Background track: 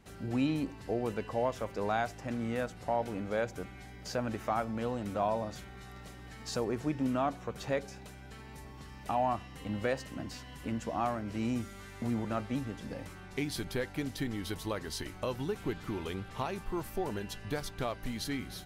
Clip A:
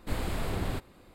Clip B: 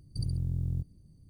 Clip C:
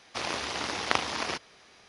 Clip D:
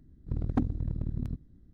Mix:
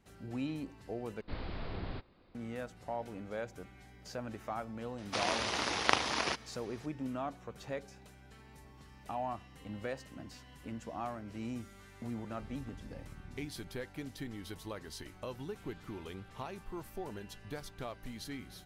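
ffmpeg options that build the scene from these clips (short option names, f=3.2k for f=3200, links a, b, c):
-filter_complex "[0:a]volume=-7.5dB[a];[1:a]aresample=11025,aresample=44100[b];[4:a]alimiter=level_in=2dB:limit=-24dB:level=0:latency=1:release=71,volume=-2dB[c];[a]asplit=2[d][e];[d]atrim=end=1.214[f];[b]atrim=end=1.14,asetpts=PTS-STARTPTS,volume=-8.5dB[g];[e]atrim=start=2.346[h];[3:a]atrim=end=1.88,asetpts=PTS-STARTPTS,volume=-1.5dB,afade=t=in:d=0.004:c=hsin,afade=t=out:st=1.876:d=0.004:c=hsin,adelay=4980[i];[c]atrim=end=1.73,asetpts=PTS-STARTPTS,volume=-15.5dB,afade=t=in:d=0.004:c=hsin,afade=t=out:st=1.726:d=0.004:c=hsin,adelay=12110[j];[f][g]acrossfade=d=0.004:c1=hsin:c2=hsin[k];[k][h]acrossfade=d=0.004:c1=hsin:c2=hsin[l];[l][i][j]amix=inputs=3:normalize=0"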